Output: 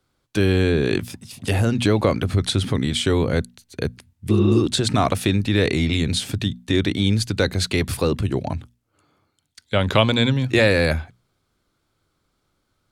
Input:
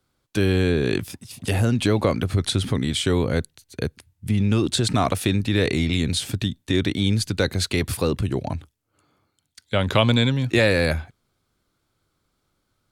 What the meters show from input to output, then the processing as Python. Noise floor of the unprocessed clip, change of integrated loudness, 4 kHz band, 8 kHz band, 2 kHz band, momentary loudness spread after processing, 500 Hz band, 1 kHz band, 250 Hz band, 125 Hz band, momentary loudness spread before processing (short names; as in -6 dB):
-73 dBFS, +1.5 dB, +1.5 dB, 0.0 dB, +2.0 dB, 11 LU, +2.0 dB, +2.0 dB, +1.5 dB, +1.0 dB, 11 LU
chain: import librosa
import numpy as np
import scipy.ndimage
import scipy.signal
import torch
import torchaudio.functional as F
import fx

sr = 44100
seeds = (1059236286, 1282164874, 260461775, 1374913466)

y = fx.high_shelf(x, sr, hz=9500.0, db=-5.0)
y = fx.spec_repair(y, sr, seeds[0], start_s=4.33, length_s=0.25, low_hz=280.0, high_hz=4000.0, source='after')
y = fx.hum_notches(y, sr, base_hz=60, count=4)
y = y * 10.0 ** (2.0 / 20.0)